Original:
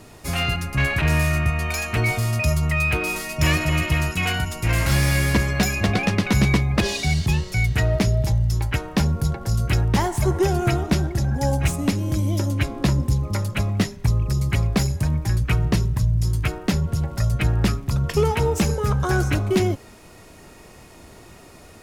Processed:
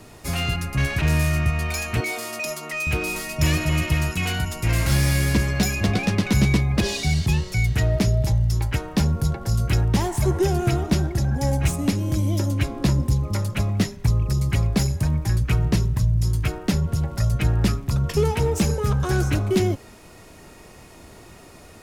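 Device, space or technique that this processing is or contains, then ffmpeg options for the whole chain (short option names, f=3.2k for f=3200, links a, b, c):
one-band saturation: -filter_complex "[0:a]asettb=1/sr,asplit=3[a][b][c];[a]atrim=end=2.004[d];[b]atrim=start=2:end=2.87,asetpts=PTS-STARTPTS,afade=t=in:d=0.004:c=qsin,afade=t=out:st=0.866:d=0.004:c=qsin,highpass=f=280:w=0.5412,highpass=f=280:w=1.3066[e];[c]atrim=start=2.866[f];[d][e]acrossfade=d=0.004:c1=hsin:c2=qsin[g];[g][f]acrossfade=d=0.004:c1=qsin:c2=hsin,acrossover=split=490|3300[h][i][j];[i]asoftclip=type=tanh:threshold=-28dB[k];[h][k][j]amix=inputs=3:normalize=0"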